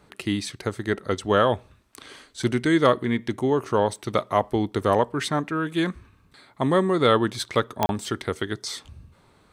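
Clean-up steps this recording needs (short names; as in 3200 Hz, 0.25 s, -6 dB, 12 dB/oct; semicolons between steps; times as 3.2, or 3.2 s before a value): de-click; interpolate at 7.86, 31 ms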